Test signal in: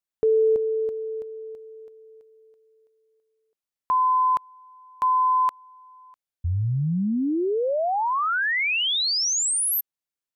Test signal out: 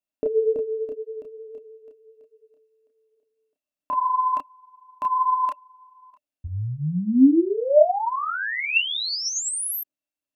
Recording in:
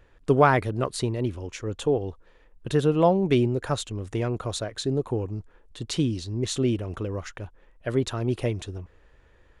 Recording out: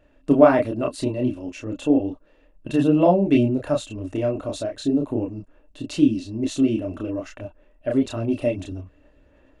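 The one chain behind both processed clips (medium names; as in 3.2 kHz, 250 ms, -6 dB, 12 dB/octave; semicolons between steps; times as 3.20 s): small resonant body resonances 280/600/2700 Hz, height 17 dB, ringing for 60 ms; chorus voices 4, 1.2 Hz, delay 30 ms, depth 3.5 ms; trim -1 dB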